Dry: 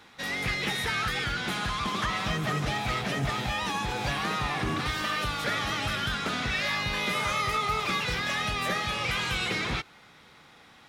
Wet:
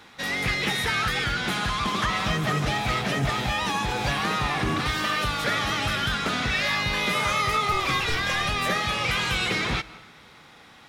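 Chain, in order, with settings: 7.72–8.49 frequency shift -53 Hz; on a send: reverb RT60 0.95 s, pre-delay 0.105 s, DRR 19.5 dB; on the sum: gain +4 dB

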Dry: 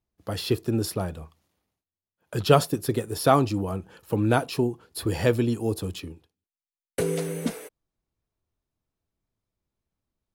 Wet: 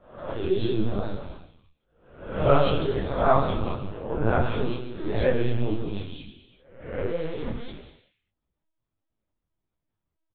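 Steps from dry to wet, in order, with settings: spectral swells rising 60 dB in 0.65 s; three bands offset in time mids, lows, highs 80/210 ms, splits 210/2600 Hz; non-linear reverb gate 0.43 s falling, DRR 3 dB; vibrato 5.9 Hz 62 cents; LPC vocoder at 8 kHz pitch kept; detuned doubles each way 53 cents

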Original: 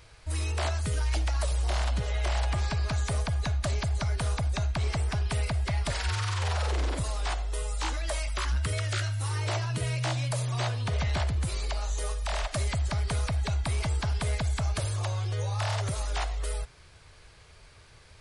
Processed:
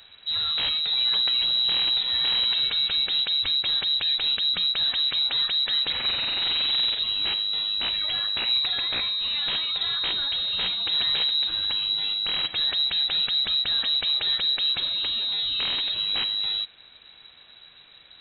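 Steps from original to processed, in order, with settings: inverted band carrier 3900 Hz; gain +2 dB

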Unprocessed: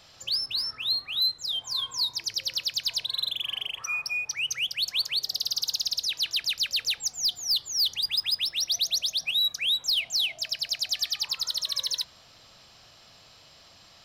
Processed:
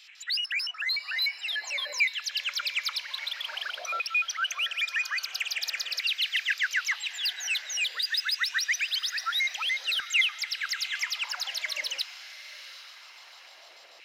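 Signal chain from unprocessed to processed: trilling pitch shifter -10.5 st, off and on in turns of 74 ms; HPF 170 Hz 12 dB/oct; in parallel at -0.5 dB: limiter -28 dBFS, peak gain reduction 9 dB; on the sum: LFO high-pass saw down 0.5 Hz 510–2400 Hz; diffused feedback echo 0.759 s, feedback 46%, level -13.5 dB; gain -6.5 dB

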